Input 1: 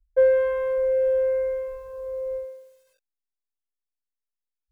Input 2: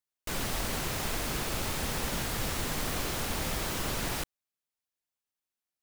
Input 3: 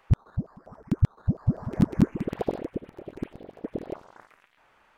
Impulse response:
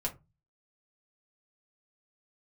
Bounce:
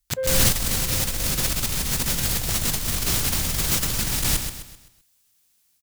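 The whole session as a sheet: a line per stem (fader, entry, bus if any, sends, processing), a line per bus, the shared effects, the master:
-17.0 dB, 0.00 s, no send, no echo send, dry
-5.5 dB, 0.00 s, no send, echo send -10 dB, tone controls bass +12 dB, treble +3 dB; AGC gain up to 12 dB
-1.5 dB, 0.00 s, send -19.5 dB, echo send -7 dB, bit-crush 6-bit; HPF 830 Hz 6 dB/oct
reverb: on, RT60 0.25 s, pre-delay 4 ms
echo: feedback echo 0.129 s, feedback 41%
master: high shelf 2000 Hz +12 dB; negative-ratio compressor -21 dBFS, ratio -0.5

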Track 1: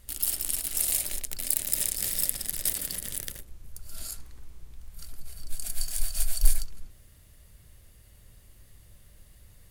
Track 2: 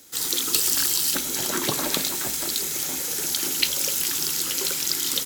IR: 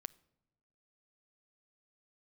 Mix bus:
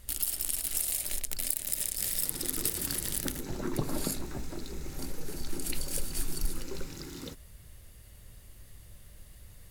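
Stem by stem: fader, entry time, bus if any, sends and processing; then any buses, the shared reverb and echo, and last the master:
+2.5 dB, 0.00 s, no send, compressor 6:1, threshold -29 dBFS, peak gain reduction 17.5 dB
-11.5 dB, 2.10 s, no send, tilt -4.5 dB/oct; notch 3200 Hz, Q 8.4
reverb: off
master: dry

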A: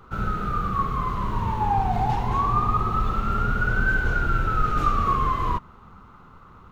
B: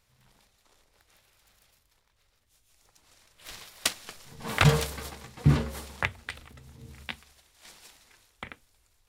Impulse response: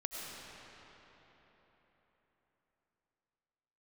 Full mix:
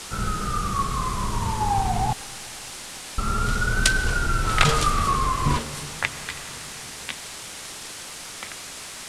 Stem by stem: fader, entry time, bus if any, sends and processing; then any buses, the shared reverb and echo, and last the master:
-1.0 dB, 0.00 s, muted 2.13–3.18, send -22.5 dB, dry
-0.5 dB, 0.00 s, send -8.5 dB, tilt +2 dB/oct; requantised 6-bit, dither triangular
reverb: on, RT60 4.2 s, pre-delay 60 ms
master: LPF 10000 Hz 24 dB/oct

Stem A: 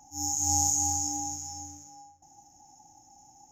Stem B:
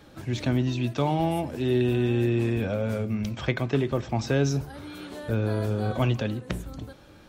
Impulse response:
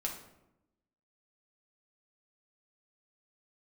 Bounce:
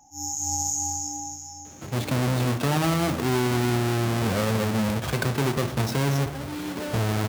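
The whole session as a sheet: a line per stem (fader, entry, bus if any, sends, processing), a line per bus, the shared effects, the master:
-0.5 dB, 0.00 s, no send, dry
-5.0 dB, 1.65 s, send -9 dB, half-waves squared off; HPF 70 Hz 12 dB/oct; AGC gain up to 5.5 dB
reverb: on, RT60 0.90 s, pre-delay 5 ms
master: limiter -15 dBFS, peak gain reduction 9 dB

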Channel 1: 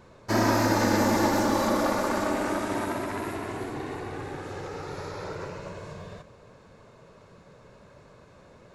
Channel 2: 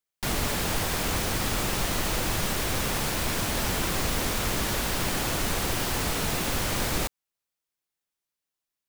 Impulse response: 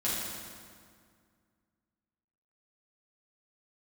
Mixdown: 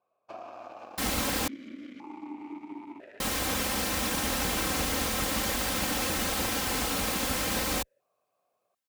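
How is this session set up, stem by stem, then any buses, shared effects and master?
-0.5 dB, 0.00 s, no send, compressor 12:1, threshold -26 dBFS, peak gain reduction 8.5 dB; added harmonics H 7 -19 dB, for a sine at -16.5 dBFS; vowel sequencer 1 Hz
+0.5 dB, 0.75 s, muted 1.48–3.2, no send, minimum comb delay 3.8 ms; HPF 50 Hz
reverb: off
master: dry

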